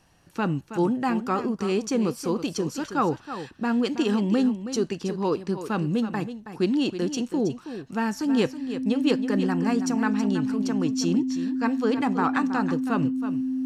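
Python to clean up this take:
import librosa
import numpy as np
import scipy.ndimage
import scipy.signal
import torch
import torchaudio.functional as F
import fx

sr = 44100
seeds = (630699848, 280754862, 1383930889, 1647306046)

y = fx.notch(x, sr, hz=260.0, q=30.0)
y = fx.fix_echo_inverse(y, sr, delay_ms=323, level_db=-11.0)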